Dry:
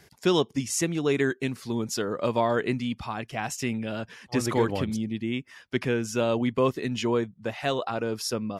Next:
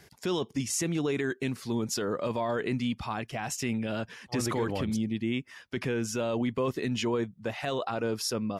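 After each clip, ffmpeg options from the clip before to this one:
-af "alimiter=limit=-21dB:level=0:latency=1:release=10"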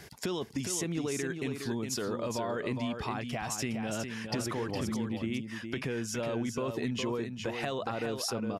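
-af "acompressor=threshold=-39dB:ratio=4,aecho=1:1:412:0.473,volume=6dB"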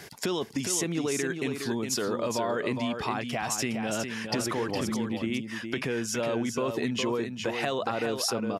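-af "highpass=f=190:p=1,volume=5.5dB"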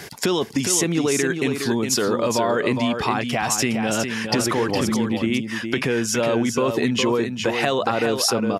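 -af "bandreject=f=640:w=21,volume=8.5dB"

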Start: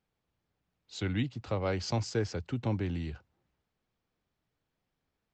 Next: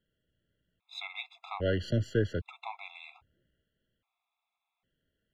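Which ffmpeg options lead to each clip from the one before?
-af "aeval=exprs='if(lt(val(0),0),0.708*val(0),val(0))':c=same,highshelf=f=4.2k:t=q:w=3:g=-7.5,afftfilt=real='re*gt(sin(2*PI*0.62*pts/sr)*(1-2*mod(floor(b*sr/1024/680),2)),0)':imag='im*gt(sin(2*PI*0.62*pts/sr)*(1-2*mod(floor(b*sr/1024/680),2)),0)':win_size=1024:overlap=0.75,volume=4dB"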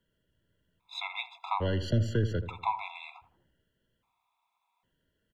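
-filter_complex "[0:a]acrossover=split=240|3000[a][b][c];[b]acompressor=threshold=-35dB:ratio=6[d];[a][d][c]amix=inputs=3:normalize=0,equalizer=f=970:t=o:w=0.28:g=14.5,asplit=2[e][f];[f]adelay=81,lowpass=f=870:p=1,volume=-10dB,asplit=2[g][h];[h]adelay=81,lowpass=f=870:p=1,volume=0.48,asplit=2[i][j];[j]adelay=81,lowpass=f=870:p=1,volume=0.48,asplit=2[k][l];[l]adelay=81,lowpass=f=870:p=1,volume=0.48,asplit=2[m][n];[n]adelay=81,lowpass=f=870:p=1,volume=0.48[o];[g][i][k][m][o]amix=inputs=5:normalize=0[p];[e][p]amix=inputs=2:normalize=0,volume=3dB"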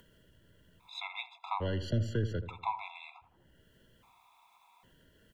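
-af "acompressor=mode=upward:threshold=-44dB:ratio=2.5,volume=-4dB"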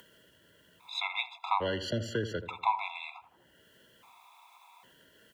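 -af "highpass=f=530:p=1,volume=7.5dB"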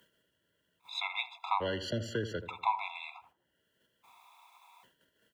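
-af "agate=range=-13dB:threshold=-59dB:ratio=16:detection=peak,volume=-2dB"

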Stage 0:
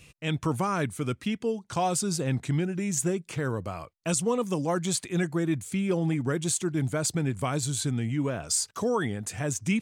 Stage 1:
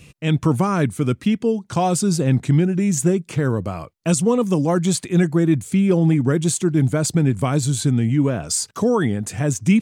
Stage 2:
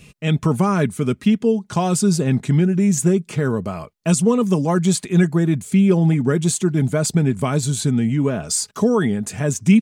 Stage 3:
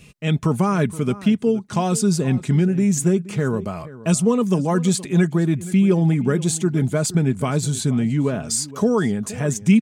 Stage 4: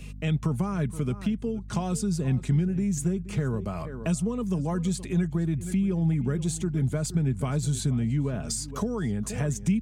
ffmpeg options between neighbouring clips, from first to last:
-af "equalizer=f=190:w=0.47:g=7,volume=4.5dB"
-af "aecho=1:1:4.8:0.4"
-filter_complex "[0:a]asplit=2[a][b];[b]adelay=472.3,volume=-17dB,highshelf=f=4k:g=-10.6[c];[a][c]amix=inputs=2:normalize=0,volume=-1.5dB"
-filter_complex "[0:a]aeval=exprs='val(0)+0.0112*(sin(2*PI*50*n/s)+sin(2*PI*2*50*n/s)/2+sin(2*PI*3*50*n/s)/3+sin(2*PI*4*50*n/s)/4+sin(2*PI*5*50*n/s)/5)':c=same,acrossover=split=130[a][b];[b]acompressor=threshold=-30dB:ratio=5[c];[a][c]amix=inputs=2:normalize=0"

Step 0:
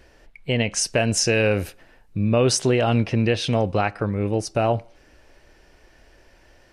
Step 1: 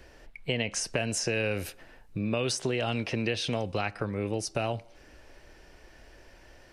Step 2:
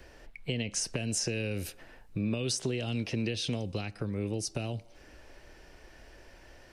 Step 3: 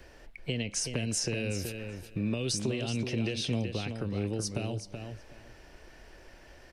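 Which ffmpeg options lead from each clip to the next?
-filter_complex "[0:a]acrossover=split=270|2200[a][b][c];[a]acompressor=threshold=-36dB:ratio=4[d];[b]acompressor=threshold=-31dB:ratio=4[e];[c]acompressor=threshold=-32dB:ratio=4[f];[d][e][f]amix=inputs=3:normalize=0"
-filter_complex "[0:a]acrossover=split=410|3000[a][b][c];[b]acompressor=threshold=-45dB:ratio=6[d];[a][d][c]amix=inputs=3:normalize=0"
-filter_complex "[0:a]asplit=2[a][b];[b]adelay=376,lowpass=f=4.8k:p=1,volume=-6.5dB,asplit=2[c][d];[d]adelay=376,lowpass=f=4.8k:p=1,volume=0.17,asplit=2[e][f];[f]adelay=376,lowpass=f=4.8k:p=1,volume=0.17[g];[a][c][e][g]amix=inputs=4:normalize=0"

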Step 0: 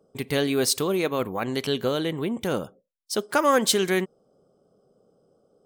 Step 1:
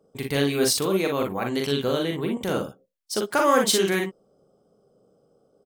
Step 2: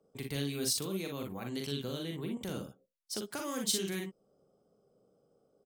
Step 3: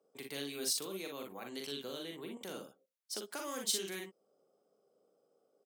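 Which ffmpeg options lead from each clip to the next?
-af "aecho=1:1:42|57:0.631|0.422,volume=-1dB"
-filter_complex "[0:a]acrossover=split=270|3000[a][b][c];[b]acompressor=threshold=-37dB:ratio=3[d];[a][d][c]amix=inputs=3:normalize=0,volume=-8dB"
-af "highpass=350,volume=-2dB"

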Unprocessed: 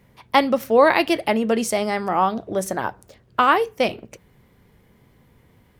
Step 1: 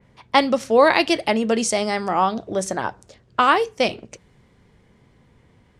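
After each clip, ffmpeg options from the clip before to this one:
-af "lowpass=f=8.5k:w=0.5412,lowpass=f=8.5k:w=1.3066,adynamicequalizer=threshold=0.0158:dfrequency=3500:dqfactor=0.7:tfrequency=3500:tqfactor=0.7:attack=5:release=100:ratio=0.375:range=4:mode=boostabove:tftype=highshelf"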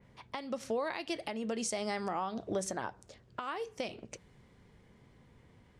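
-af "acompressor=threshold=-22dB:ratio=20,alimiter=limit=-19dB:level=0:latency=1:release=382,volume=-5.5dB"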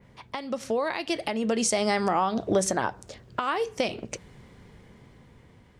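-af "dynaudnorm=f=350:g=7:m=5dB,volume=6dB"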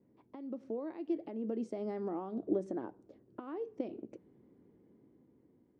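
-af "bandpass=f=310:t=q:w=3.5:csg=0,volume=-2dB"

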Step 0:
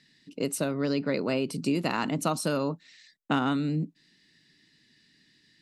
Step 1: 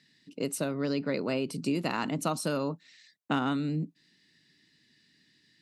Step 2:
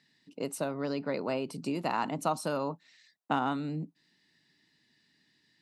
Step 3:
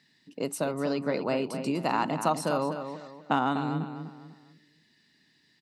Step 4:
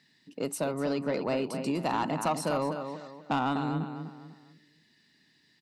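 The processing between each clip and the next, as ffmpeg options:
-af "highpass=48,volume=-2.5dB"
-af "equalizer=f=840:w=1.3:g=10,volume=-5dB"
-filter_complex "[0:a]asplit=2[a][b];[b]adelay=248,lowpass=f=4.2k:p=1,volume=-8.5dB,asplit=2[c][d];[d]adelay=248,lowpass=f=4.2k:p=1,volume=0.35,asplit=2[e][f];[f]adelay=248,lowpass=f=4.2k:p=1,volume=0.35,asplit=2[g][h];[h]adelay=248,lowpass=f=4.2k:p=1,volume=0.35[i];[a][c][e][g][i]amix=inputs=5:normalize=0,volume=3.5dB"
-af "asoftclip=type=tanh:threshold=-19.5dB"

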